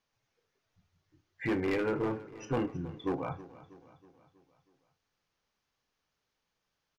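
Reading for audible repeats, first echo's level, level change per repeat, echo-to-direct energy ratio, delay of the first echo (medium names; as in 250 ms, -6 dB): 4, -17.5 dB, -5.5 dB, -16.0 dB, 321 ms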